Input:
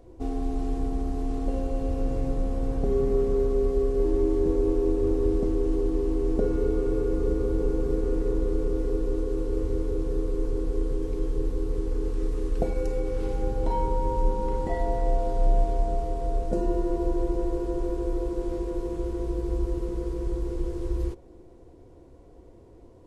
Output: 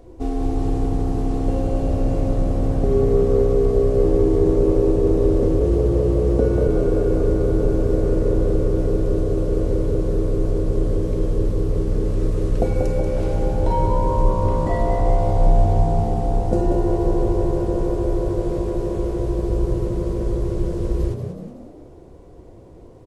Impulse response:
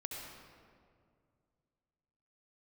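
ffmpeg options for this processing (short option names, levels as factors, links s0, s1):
-filter_complex "[0:a]asplit=3[s0][s1][s2];[s0]afade=t=out:st=5.59:d=0.02[s3];[s1]afreqshift=25,afade=t=in:st=5.59:d=0.02,afade=t=out:st=6.67:d=0.02[s4];[s2]afade=t=in:st=6.67:d=0.02[s5];[s3][s4][s5]amix=inputs=3:normalize=0,asplit=7[s6][s7][s8][s9][s10][s11][s12];[s7]adelay=186,afreqshift=63,volume=0.398[s13];[s8]adelay=372,afreqshift=126,volume=0.191[s14];[s9]adelay=558,afreqshift=189,volume=0.0912[s15];[s10]adelay=744,afreqshift=252,volume=0.0442[s16];[s11]adelay=930,afreqshift=315,volume=0.0211[s17];[s12]adelay=1116,afreqshift=378,volume=0.0101[s18];[s6][s13][s14][s15][s16][s17][s18]amix=inputs=7:normalize=0,volume=2"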